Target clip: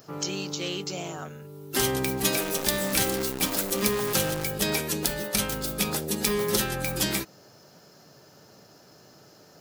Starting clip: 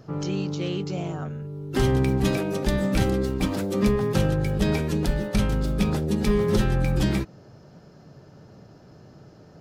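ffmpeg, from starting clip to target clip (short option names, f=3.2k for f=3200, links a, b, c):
-filter_complex "[0:a]aemphasis=mode=production:type=riaa,asettb=1/sr,asplit=3[a][b][c];[a]atrim=end=2.334[d];[b]atrim=start=2.33:end=4.47,asetpts=PTS-STARTPTS,afade=t=in:d=0.004:c=qsin,afade=t=out:st=2.136:d=0.004:c=qsin,acrusher=bits=6:dc=4:mix=0:aa=0.000001[e];[c]atrim=start=4.466[f];[d][e]acrossfade=d=0.004:c1=hsin:c2=qsin[g];[g][f]acrossfade=d=0.004:c1=qsin:c2=hsin"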